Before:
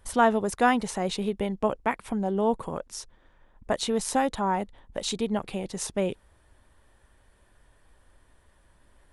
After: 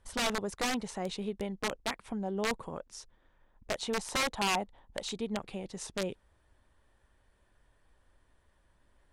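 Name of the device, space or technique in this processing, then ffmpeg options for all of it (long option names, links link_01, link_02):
overflowing digital effects unit: -filter_complex "[0:a]asplit=3[link_01][link_02][link_03];[link_01]afade=type=out:start_time=3.74:duration=0.02[link_04];[link_02]adynamicequalizer=threshold=0.0112:dfrequency=800:dqfactor=1.5:tfrequency=800:tqfactor=1.5:attack=5:release=100:ratio=0.375:range=3.5:mode=boostabove:tftype=bell,afade=type=in:start_time=3.74:duration=0.02,afade=type=out:start_time=5.14:duration=0.02[link_05];[link_03]afade=type=in:start_time=5.14:duration=0.02[link_06];[link_04][link_05][link_06]amix=inputs=3:normalize=0,aeval=exprs='(mod(6.31*val(0)+1,2)-1)/6.31':channel_layout=same,lowpass=8700,volume=-7.5dB"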